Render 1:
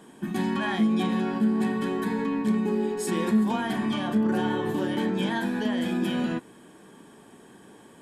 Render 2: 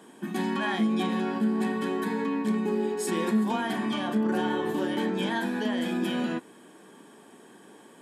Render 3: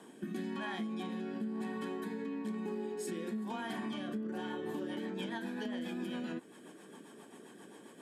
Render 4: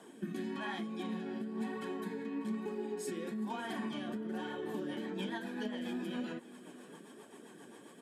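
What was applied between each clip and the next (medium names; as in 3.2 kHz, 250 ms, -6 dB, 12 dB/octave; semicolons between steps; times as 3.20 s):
high-pass 210 Hz 12 dB/octave
rotary cabinet horn 1 Hz, later 7.5 Hz, at 4.18 s; compression 5:1, threshold -37 dBFS, peak gain reduction 13 dB
flange 1.1 Hz, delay 1.3 ms, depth 7.5 ms, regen +50%; delay 593 ms -18.5 dB; trim +4 dB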